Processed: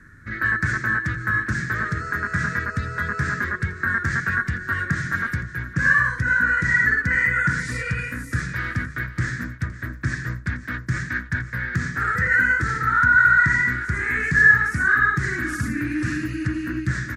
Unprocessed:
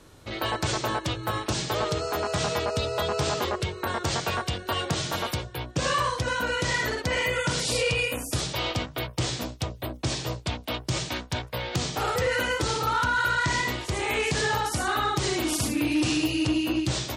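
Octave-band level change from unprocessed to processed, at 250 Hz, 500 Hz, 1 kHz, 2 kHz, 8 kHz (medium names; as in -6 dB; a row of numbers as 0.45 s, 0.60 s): +0.5 dB, -10.5 dB, +2.0 dB, +12.0 dB, -9.0 dB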